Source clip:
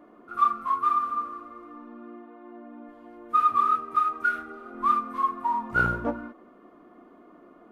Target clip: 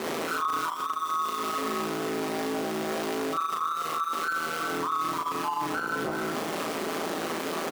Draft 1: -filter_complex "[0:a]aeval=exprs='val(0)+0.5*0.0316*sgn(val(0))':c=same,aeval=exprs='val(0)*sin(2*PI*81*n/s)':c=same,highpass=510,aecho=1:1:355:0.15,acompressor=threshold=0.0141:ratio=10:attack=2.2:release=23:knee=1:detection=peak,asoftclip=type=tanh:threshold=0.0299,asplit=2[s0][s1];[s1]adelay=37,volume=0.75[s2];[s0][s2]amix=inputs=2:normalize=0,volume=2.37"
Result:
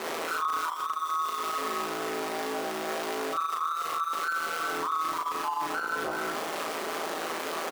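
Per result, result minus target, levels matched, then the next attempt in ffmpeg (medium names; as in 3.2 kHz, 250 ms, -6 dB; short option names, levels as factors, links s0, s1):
saturation: distortion +11 dB; 250 Hz band -6.0 dB
-filter_complex "[0:a]aeval=exprs='val(0)+0.5*0.0316*sgn(val(0))':c=same,aeval=exprs='val(0)*sin(2*PI*81*n/s)':c=same,highpass=510,aecho=1:1:355:0.15,acompressor=threshold=0.0141:ratio=10:attack=2.2:release=23:knee=1:detection=peak,asoftclip=type=tanh:threshold=0.0596,asplit=2[s0][s1];[s1]adelay=37,volume=0.75[s2];[s0][s2]amix=inputs=2:normalize=0,volume=2.37"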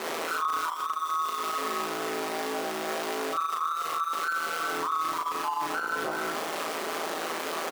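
250 Hz band -6.0 dB
-filter_complex "[0:a]aeval=exprs='val(0)+0.5*0.0316*sgn(val(0))':c=same,aeval=exprs='val(0)*sin(2*PI*81*n/s)':c=same,highpass=240,aecho=1:1:355:0.15,acompressor=threshold=0.0141:ratio=10:attack=2.2:release=23:knee=1:detection=peak,asoftclip=type=tanh:threshold=0.0596,asplit=2[s0][s1];[s1]adelay=37,volume=0.75[s2];[s0][s2]amix=inputs=2:normalize=0,volume=2.37"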